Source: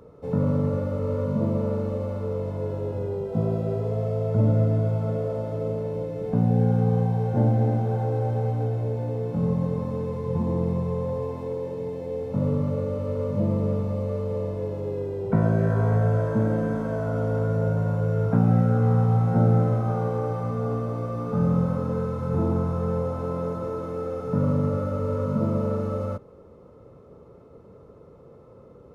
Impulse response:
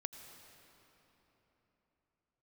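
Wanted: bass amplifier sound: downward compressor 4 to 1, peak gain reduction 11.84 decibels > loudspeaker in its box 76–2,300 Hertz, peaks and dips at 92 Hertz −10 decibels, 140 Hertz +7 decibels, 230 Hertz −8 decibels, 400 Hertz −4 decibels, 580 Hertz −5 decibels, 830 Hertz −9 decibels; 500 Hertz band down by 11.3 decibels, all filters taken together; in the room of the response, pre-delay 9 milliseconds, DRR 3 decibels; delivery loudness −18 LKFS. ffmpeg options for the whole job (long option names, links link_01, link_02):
-filter_complex "[0:a]equalizer=frequency=500:width_type=o:gain=-8,asplit=2[link_01][link_02];[1:a]atrim=start_sample=2205,adelay=9[link_03];[link_02][link_03]afir=irnorm=-1:irlink=0,volume=-0.5dB[link_04];[link_01][link_04]amix=inputs=2:normalize=0,acompressor=threshold=-26dB:ratio=4,highpass=frequency=76:width=0.5412,highpass=frequency=76:width=1.3066,equalizer=frequency=92:width_type=q:width=4:gain=-10,equalizer=frequency=140:width_type=q:width=4:gain=7,equalizer=frequency=230:width_type=q:width=4:gain=-8,equalizer=frequency=400:width_type=q:width=4:gain=-4,equalizer=frequency=580:width_type=q:width=4:gain=-5,equalizer=frequency=830:width_type=q:width=4:gain=-9,lowpass=frequency=2300:width=0.5412,lowpass=frequency=2300:width=1.3066,volume=13.5dB"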